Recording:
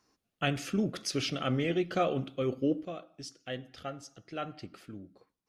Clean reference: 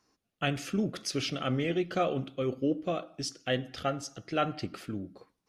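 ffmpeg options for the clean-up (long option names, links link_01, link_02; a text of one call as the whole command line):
ffmpeg -i in.wav -af "asetnsamples=nb_out_samples=441:pad=0,asendcmd='2.85 volume volume 8.5dB',volume=0dB" out.wav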